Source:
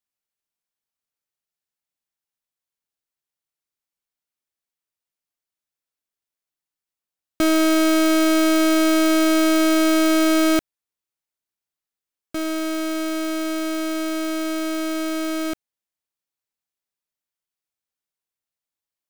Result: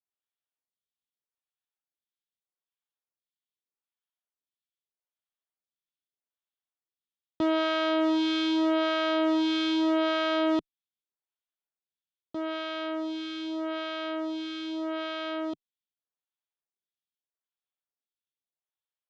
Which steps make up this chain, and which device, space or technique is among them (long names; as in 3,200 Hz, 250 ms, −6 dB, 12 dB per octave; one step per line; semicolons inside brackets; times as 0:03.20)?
vibe pedal into a guitar amplifier (phaser with staggered stages 0.81 Hz; tube saturation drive 18 dB, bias 0.8; loudspeaker in its box 100–4,200 Hz, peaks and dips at 160 Hz −7 dB, 290 Hz −3 dB, 2,100 Hz −4 dB, 3,400 Hz +8 dB)